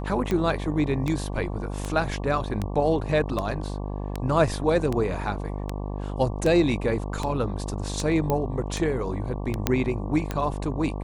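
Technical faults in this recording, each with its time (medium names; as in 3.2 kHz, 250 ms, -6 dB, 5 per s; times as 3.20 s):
buzz 50 Hz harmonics 23 -31 dBFS
tick 78 rpm -14 dBFS
8.30 s: pop -12 dBFS
9.67 s: pop -6 dBFS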